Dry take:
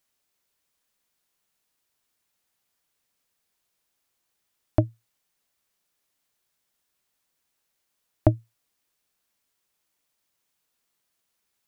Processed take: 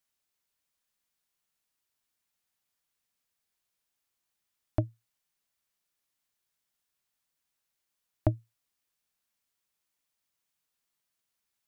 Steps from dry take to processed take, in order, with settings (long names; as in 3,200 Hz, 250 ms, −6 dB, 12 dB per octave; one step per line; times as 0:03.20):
parametric band 440 Hz −3.5 dB 1.7 octaves
level −6 dB